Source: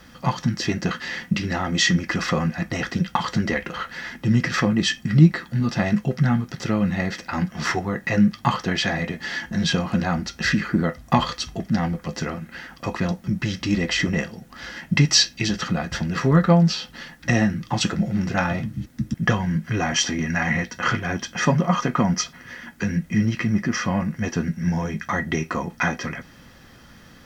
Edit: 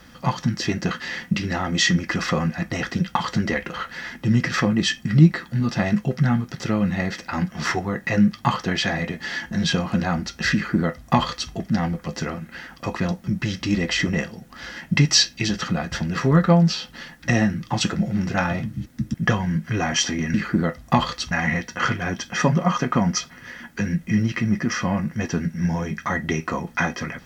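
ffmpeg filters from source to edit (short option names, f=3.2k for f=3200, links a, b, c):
-filter_complex "[0:a]asplit=3[a][b][c];[a]atrim=end=20.342[d];[b]atrim=start=10.538:end=11.512[e];[c]atrim=start=20.338[f];[d][e]acrossfade=d=0.004:c1=hsin:c2=hsin[g];[g][f]acrossfade=d=0.004:c1=hsin:c2=hsin"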